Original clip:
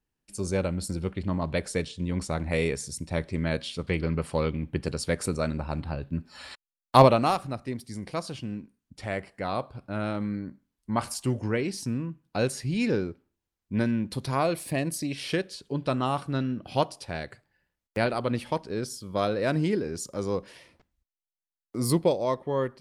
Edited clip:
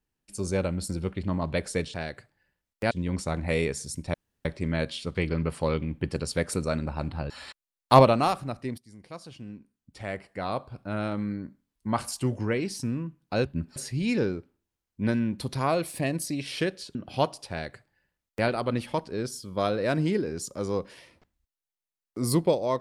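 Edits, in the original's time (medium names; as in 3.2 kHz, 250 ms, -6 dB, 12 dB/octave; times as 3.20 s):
3.17 s: insert room tone 0.31 s
6.02–6.33 s: move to 12.48 s
7.81–9.72 s: fade in, from -16 dB
15.67–16.53 s: delete
17.08–18.05 s: copy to 1.94 s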